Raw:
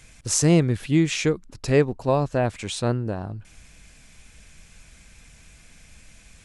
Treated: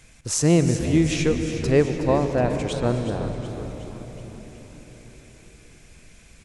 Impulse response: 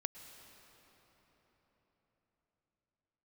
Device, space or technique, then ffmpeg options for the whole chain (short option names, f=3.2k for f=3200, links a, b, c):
cathedral: -filter_complex "[1:a]atrim=start_sample=2205[a];[0:a][a]afir=irnorm=-1:irlink=0,asettb=1/sr,asplit=3[b][c][d];[b]atrim=end=2.734[e];[c]atrim=start=2.73:end=3.13,asetpts=PTS-STARTPTS,afade=t=in:d=0.004:c=qsin,afade=t=out:st=0.396:d=0.004:c=qsin,acrossover=split=3100[f][g];[g]acompressor=threshold=-43dB:ratio=4:attack=1:release=60[h];[f][h]amix=inputs=2:normalize=0[i];[d]atrim=start=3.126[j];[e][i]acrossfade=d=0.004:c1=hsin:c2=qsin[k];[k][j]acrossfade=d=0.004:c1=qsin:c2=hsin,equalizer=f=380:w=0.51:g=3,asplit=8[l][m][n][o][p][q][r][s];[m]adelay=369,afreqshift=-84,volume=-11.5dB[t];[n]adelay=738,afreqshift=-168,volume=-15.7dB[u];[o]adelay=1107,afreqshift=-252,volume=-19.8dB[v];[p]adelay=1476,afreqshift=-336,volume=-24dB[w];[q]adelay=1845,afreqshift=-420,volume=-28.1dB[x];[r]adelay=2214,afreqshift=-504,volume=-32.3dB[y];[s]adelay=2583,afreqshift=-588,volume=-36.4dB[z];[l][t][u][v][w][x][y][z]amix=inputs=8:normalize=0"